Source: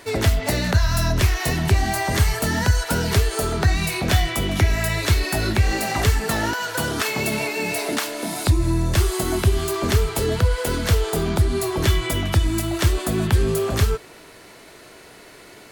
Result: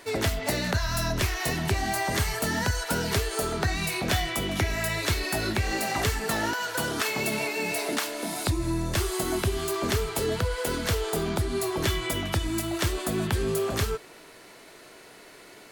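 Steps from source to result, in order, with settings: peaking EQ 62 Hz -8 dB 2.2 oct; trim -4 dB

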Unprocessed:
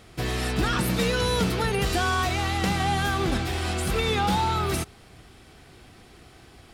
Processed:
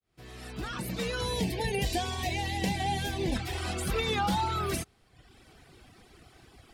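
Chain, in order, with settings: fade-in on the opening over 1.68 s; reverb removal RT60 0.93 s; 1.33–3.36 s: Butterworth band-stop 1.3 kHz, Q 1.7; trim -3 dB

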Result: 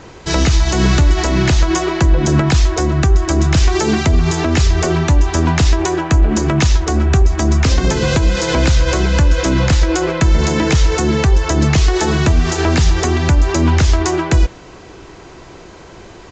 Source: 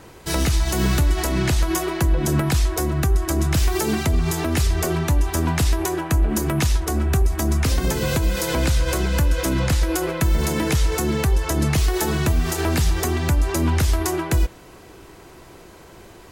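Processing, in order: resampled via 16 kHz; trim +7 dB

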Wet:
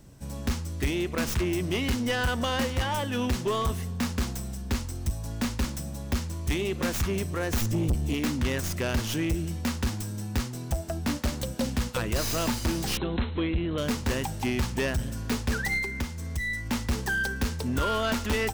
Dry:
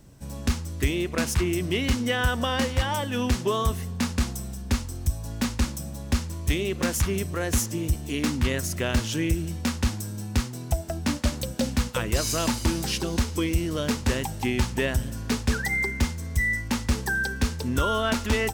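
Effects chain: tracing distortion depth 0.13 ms; 7.61–8.14 s: bass shelf 230 Hz +11 dB; 15.78–16.66 s: compression 2.5:1, threshold -29 dBFS, peak gain reduction 7.5 dB; saturation -20.5 dBFS, distortion -10 dB; 12.97–13.78 s: brick-wall FIR low-pass 4.2 kHz

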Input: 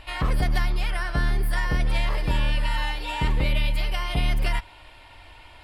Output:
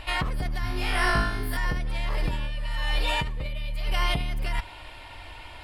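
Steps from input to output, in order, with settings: 2.47–3.86 s: comb 1.7 ms, depth 40%; compressor with a negative ratio -26 dBFS, ratio -1; 0.61–1.57 s: flutter echo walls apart 3.3 m, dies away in 0.73 s

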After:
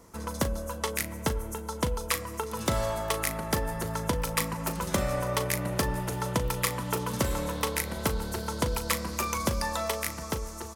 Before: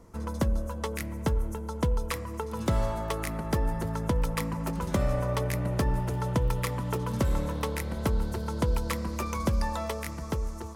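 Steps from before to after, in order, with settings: tilt EQ +2 dB/octave; doubling 38 ms -11 dB; trim +2.5 dB

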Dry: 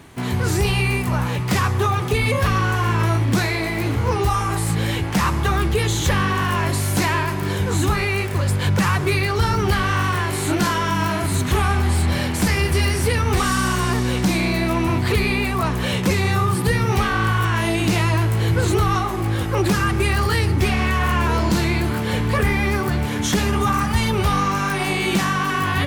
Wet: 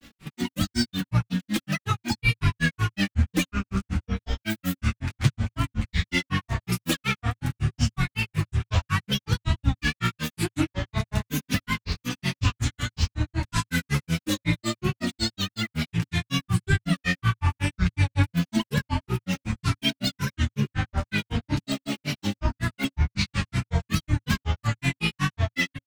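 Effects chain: comb 6.3 ms, depth 84%; granulator 120 ms, grains 5.4 per s, pitch spread up and down by 12 st; FFT filter 110 Hz 0 dB, 270 Hz -5 dB, 550 Hz -15 dB, 2.6 kHz -2 dB, 4.1 kHz -4 dB, 7.5 kHz -5 dB, 15 kHz -8 dB; trim +1.5 dB

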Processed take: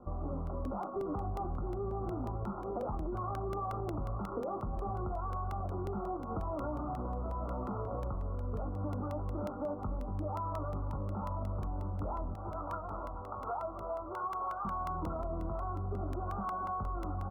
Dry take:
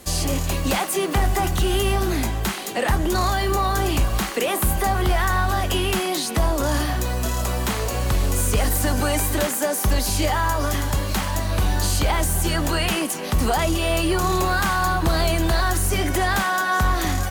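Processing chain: 12.33–14.65 s: high-pass 820 Hz 12 dB/octave; feedback delay 891 ms, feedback 47%, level -15 dB; flange 1.3 Hz, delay 8.2 ms, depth 2.2 ms, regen -51%; doubling 20 ms -7 dB; peak limiter -20.5 dBFS, peak gain reduction 8.5 dB; Chebyshev low-pass 1.4 kHz, order 10; compression, threshold -30 dBFS, peak gain reduction 5 dB; crackling interface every 0.18 s, samples 64, repeat, from 0.47 s; trim -3 dB

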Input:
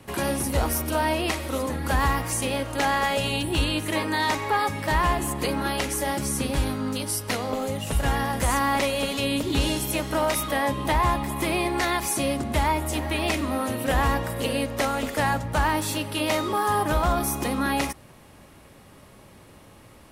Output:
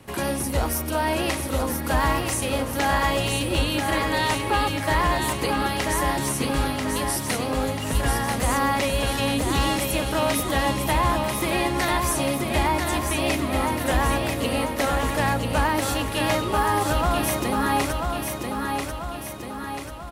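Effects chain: feedback delay 989 ms, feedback 54%, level -4.5 dB

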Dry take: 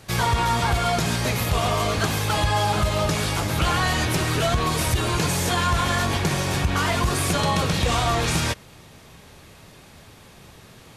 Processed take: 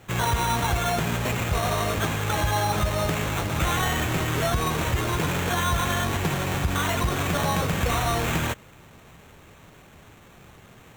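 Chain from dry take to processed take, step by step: sample-and-hold 9×; trim -2.5 dB

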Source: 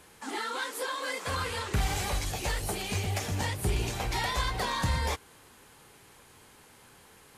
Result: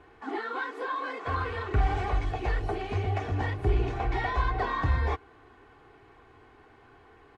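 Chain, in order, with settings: low-pass 1.7 kHz 12 dB/octave; comb 2.7 ms, depth 67%; trim +1.5 dB

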